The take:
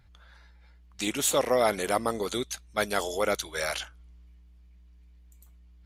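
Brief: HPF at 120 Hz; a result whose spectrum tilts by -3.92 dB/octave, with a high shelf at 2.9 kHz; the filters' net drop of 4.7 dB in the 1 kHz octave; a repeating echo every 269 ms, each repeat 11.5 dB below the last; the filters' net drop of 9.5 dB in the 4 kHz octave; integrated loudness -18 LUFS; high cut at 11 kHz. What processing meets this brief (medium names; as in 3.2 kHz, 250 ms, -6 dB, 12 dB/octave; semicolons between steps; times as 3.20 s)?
high-pass 120 Hz; low-pass 11 kHz; peaking EQ 1 kHz -5.5 dB; treble shelf 2.9 kHz -8.5 dB; peaking EQ 4 kHz -5 dB; feedback delay 269 ms, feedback 27%, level -11.5 dB; trim +13.5 dB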